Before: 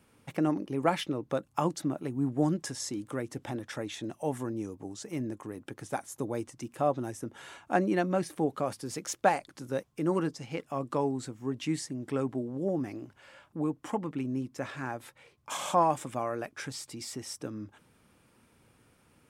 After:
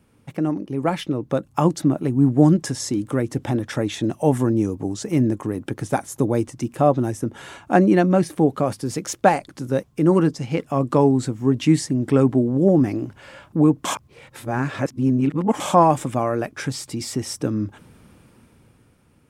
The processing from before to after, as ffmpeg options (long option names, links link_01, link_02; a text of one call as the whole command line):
ffmpeg -i in.wav -filter_complex "[0:a]asplit=3[link_01][link_02][link_03];[link_01]atrim=end=13.852[link_04];[link_02]atrim=start=13.848:end=15.602,asetpts=PTS-STARTPTS,areverse[link_05];[link_03]atrim=start=15.598[link_06];[link_04][link_05]acrossfade=duration=0.004:curve1=hsin:curve2=hsin[link_07];[link_07][link_06]acrossfade=duration=0.004:curve1=hsin:curve2=hsin,lowshelf=frequency=370:gain=8.5,dynaudnorm=framelen=190:gausssize=13:maxgain=11dB" out.wav